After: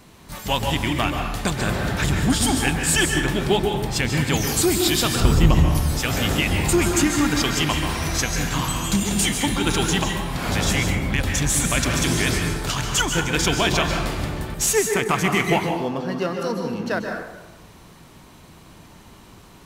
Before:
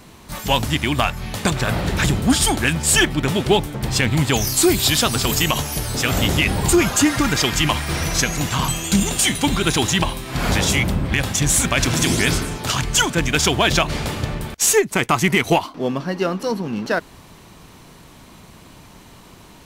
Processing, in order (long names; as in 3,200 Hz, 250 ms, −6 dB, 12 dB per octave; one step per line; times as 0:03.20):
0:05.20–0:05.75: spectral tilt −3.5 dB per octave
dense smooth reverb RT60 1 s, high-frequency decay 0.5×, pre-delay 120 ms, DRR 2.5 dB
level −4.5 dB